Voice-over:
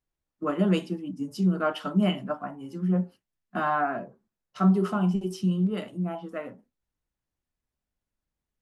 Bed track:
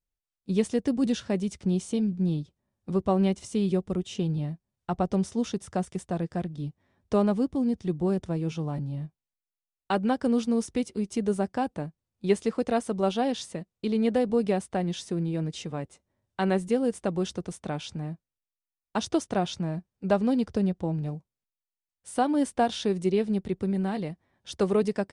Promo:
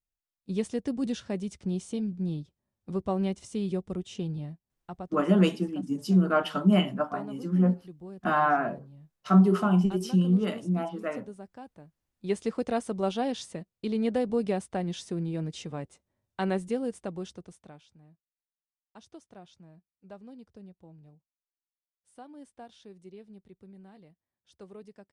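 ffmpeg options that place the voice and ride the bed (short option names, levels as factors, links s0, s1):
-filter_complex "[0:a]adelay=4700,volume=1.26[s0];[1:a]volume=2.99,afade=t=out:st=4.24:d=0.97:silence=0.237137,afade=t=in:st=11.98:d=0.49:silence=0.188365,afade=t=out:st=16.41:d=1.45:silence=0.1[s1];[s0][s1]amix=inputs=2:normalize=0"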